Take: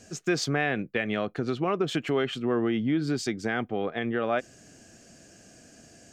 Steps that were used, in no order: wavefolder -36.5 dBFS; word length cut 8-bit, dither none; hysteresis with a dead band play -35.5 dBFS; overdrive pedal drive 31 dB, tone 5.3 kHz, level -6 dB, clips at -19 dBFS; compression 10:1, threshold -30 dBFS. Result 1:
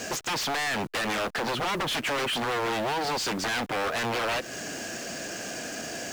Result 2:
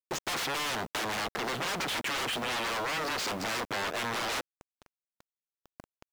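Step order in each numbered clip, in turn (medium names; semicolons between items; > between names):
compression > wavefolder > overdrive pedal > word length cut > hysteresis with a dead band; wavefolder > hysteresis with a dead band > overdrive pedal > word length cut > compression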